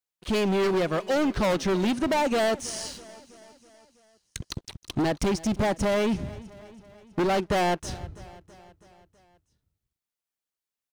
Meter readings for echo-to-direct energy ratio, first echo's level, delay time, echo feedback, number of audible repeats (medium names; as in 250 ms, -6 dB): -18.0 dB, -20.0 dB, 326 ms, 59%, 4